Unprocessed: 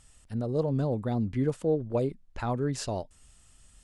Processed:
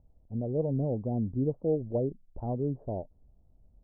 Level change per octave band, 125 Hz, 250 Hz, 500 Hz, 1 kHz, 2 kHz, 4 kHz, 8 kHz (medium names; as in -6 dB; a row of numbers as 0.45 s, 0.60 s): -1.5 dB, -1.5 dB, -1.5 dB, -6.5 dB, under -40 dB, under -35 dB, under -35 dB